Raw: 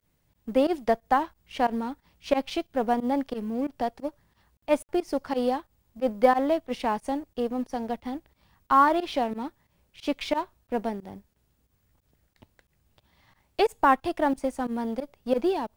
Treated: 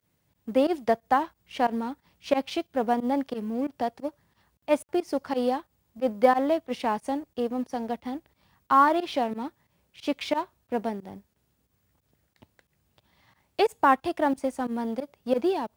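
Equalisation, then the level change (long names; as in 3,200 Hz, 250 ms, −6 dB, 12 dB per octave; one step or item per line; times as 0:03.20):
high-pass filter 81 Hz 12 dB per octave
0.0 dB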